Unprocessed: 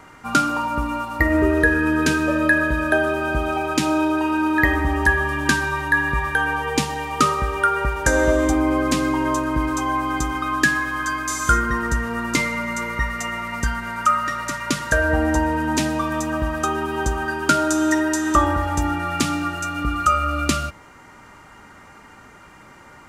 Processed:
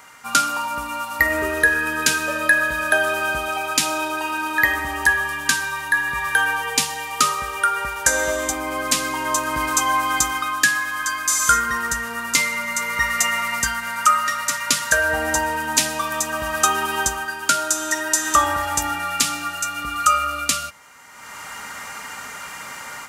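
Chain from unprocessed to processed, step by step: tilt EQ +3.5 dB/octave; level rider; peaking EQ 340 Hz -10.5 dB 0.32 oct; trim -1 dB

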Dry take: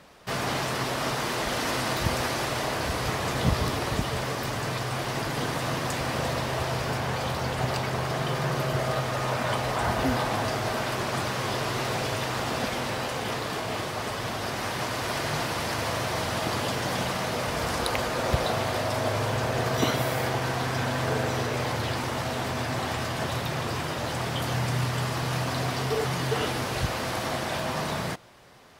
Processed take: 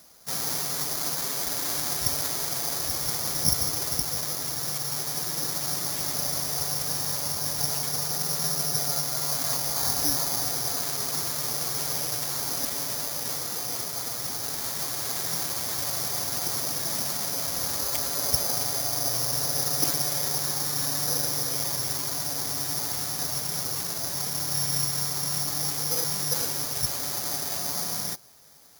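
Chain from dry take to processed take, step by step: formant-preserving pitch shift +2 st; careless resampling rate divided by 8×, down filtered, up zero stuff; trim -8.5 dB

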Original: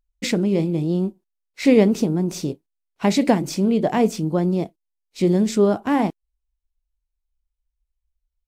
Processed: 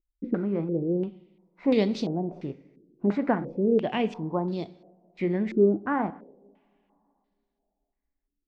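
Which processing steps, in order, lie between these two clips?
two-slope reverb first 0.84 s, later 3.1 s, from -18 dB, DRR 15 dB; step-sequenced low-pass 2.9 Hz 340–4100 Hz; trim -9 dB

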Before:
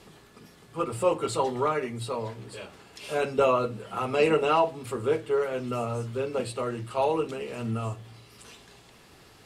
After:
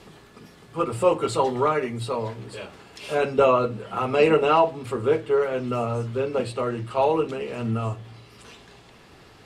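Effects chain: treble shelf 6.6 kHz -6.5 dB, from 3.15 s -11.5 dB; trim +4.5 dB

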